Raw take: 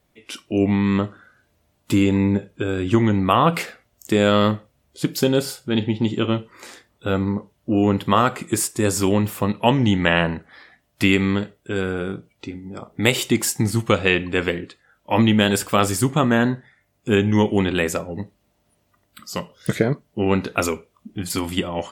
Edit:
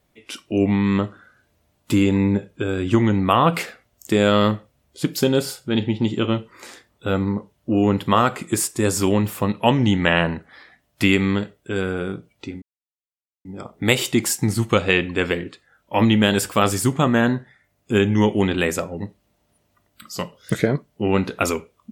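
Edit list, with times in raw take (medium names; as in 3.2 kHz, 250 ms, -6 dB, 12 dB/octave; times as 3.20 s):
12.62 s: insert silence 0.83 s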